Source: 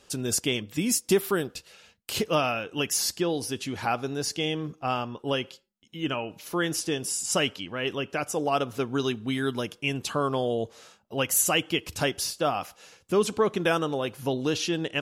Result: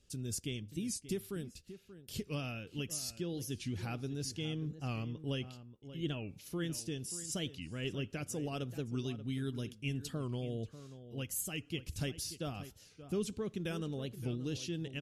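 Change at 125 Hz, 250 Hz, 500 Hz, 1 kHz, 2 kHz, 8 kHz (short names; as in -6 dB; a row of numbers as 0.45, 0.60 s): -3.5, -9.5, -15.0, -21.5, -16.0, -13.5 dB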